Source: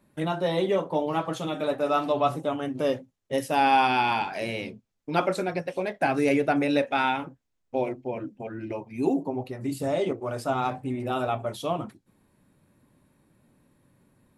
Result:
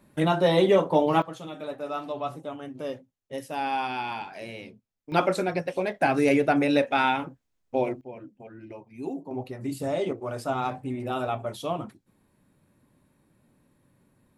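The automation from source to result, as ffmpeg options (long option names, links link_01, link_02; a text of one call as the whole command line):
ffmpeg -i in.wav -af "asetnsamples=nb_out_samples=441:pad=0,asendcmd='1.22 volume volume -8dB;5.12 volume volume 1.5dB;8.01 volume volume -9dB;9.31 volume volume -1.5dB',volume=5dB" out.wav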